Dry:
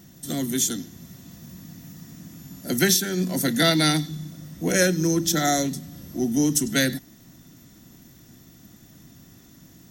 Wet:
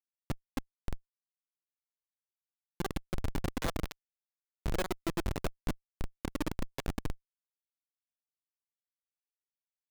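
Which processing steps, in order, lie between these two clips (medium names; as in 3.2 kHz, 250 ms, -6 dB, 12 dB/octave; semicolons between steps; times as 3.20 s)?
in parallel at +1 dB: compression 8:1, threshold -34 dBFS, peak gain reduction 18.5 dB; on the sum: speakerphone echo 90 ms, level -28 dB; granulator 42 ms, grains 18 per s, spray 16 ms; on a send: echo whose repeats swap between lows and highs 583 ms, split 950 Hz, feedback 69%, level -5.5 dB; on the sum: LPC vocoder at 8 kHz pitch kept; Schmitt trigger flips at -25 dBFS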